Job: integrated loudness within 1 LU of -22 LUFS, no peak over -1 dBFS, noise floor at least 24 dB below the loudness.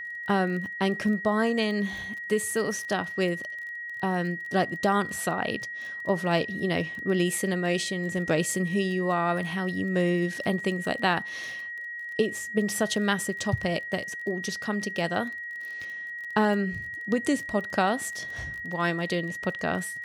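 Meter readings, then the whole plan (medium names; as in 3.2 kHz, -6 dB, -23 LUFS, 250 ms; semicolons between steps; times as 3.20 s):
tick rate 22 per s; steady tone 1.9 kHz; tone level -34 dBFS; loudness -28.0 LUFS; peak level -10.0 dBFS; loudness target -22.0 LUFS
-> de-click; band-stop 1.9 kHz, Q 30; trim +6 dB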